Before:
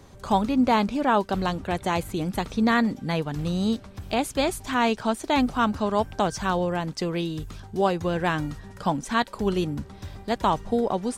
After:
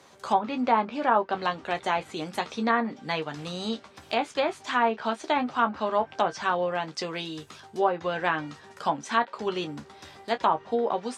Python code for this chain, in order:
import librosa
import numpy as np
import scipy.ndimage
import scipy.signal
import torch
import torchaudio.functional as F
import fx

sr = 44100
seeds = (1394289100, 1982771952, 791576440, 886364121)

y = fx.weighting(x, sr, curve='A')
y = fx.room_early_taps(y, sr, ms=(13, 28), db=(-7.5, -13.5))
y = fx.env_lowpass_down(y, sr, base_hz=1400.0, full_db=-18.5)